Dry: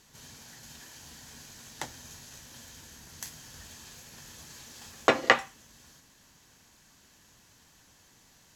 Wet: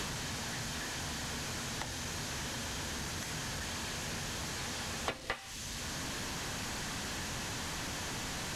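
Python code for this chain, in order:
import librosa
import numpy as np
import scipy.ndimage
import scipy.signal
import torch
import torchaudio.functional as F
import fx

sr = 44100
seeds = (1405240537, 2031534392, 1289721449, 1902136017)

y = fx.delta_mod(x, sr, bps=64000, step_db=-30.5)
y = fx.lowpass(y, sr, hz=3900.0, slope=6)
y = fx.band_squash(y, sr, depth_pct=100)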